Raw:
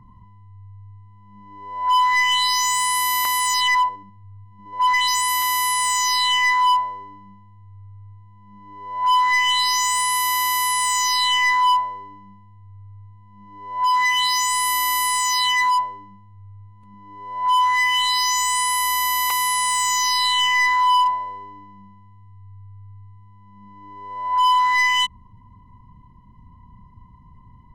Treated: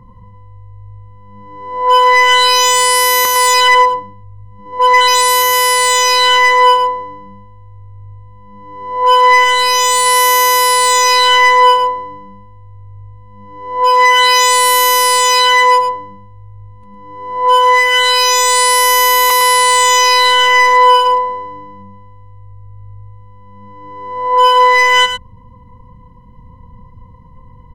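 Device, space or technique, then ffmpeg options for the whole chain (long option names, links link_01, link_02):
octave pedal: -filter_complex "[0:a]asettb=1/sr,asplit=3[link_01][link_02][link_03];[link_01]atrim=end=9.444[link_04];[link_02]atrim=start=9.44:end=10.06,asetpts=PTS-STARTPTS,afade=type=in:duration=0.004:curve=qsin,afade=type=out:start_time=0.616:duration=0.004:curve=qsin,equalizer=frequency=2500:width_type=o:width=2.1:gain=-5[link_05];[link_03]atrim=start=10.056[link_06];[link_04][link_05]acrossfade=duration=0.004:curve1=hsin:curve2=qsin[link_07];[link_07][link_06]acrossfade=duration=0.004:curve1=qsin:curve2=hsin,aecho=1:1:107:0.376,asplit=2[link_08][link_09];[link_09]asetrate=22050,aresample=44100,atempo=2,volume=-8dB[link_10];[link_08][link_10]amix=inputs=2:normalize=0,volume=7dB"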